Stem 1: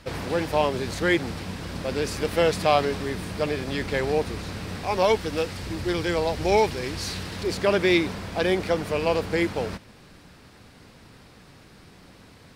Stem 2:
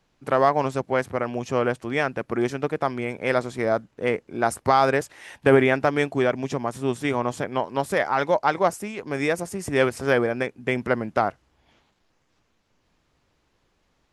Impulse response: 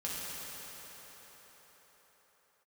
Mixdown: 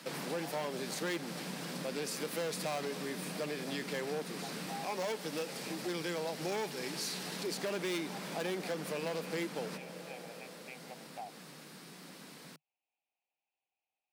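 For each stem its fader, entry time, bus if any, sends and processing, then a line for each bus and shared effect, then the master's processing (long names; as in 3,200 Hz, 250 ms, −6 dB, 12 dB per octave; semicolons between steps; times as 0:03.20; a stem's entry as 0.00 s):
−2.0 dB, 0.00 s, send −18 dB, gain into a clipping stage and back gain 19.5 dB
−14.5 dB, 0.00 s, no send, pair of resonant band-passes 1,400 Hz, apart 1.7 octaves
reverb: on, pre-delay 3 ms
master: Chebyshev high-pass filter 150 Hz, order 5; high-shelf EQ 6,800 Hz +11 dB; downward compressor 2 to 1, threshold −42 dBFS, peak gain reduction 12 dB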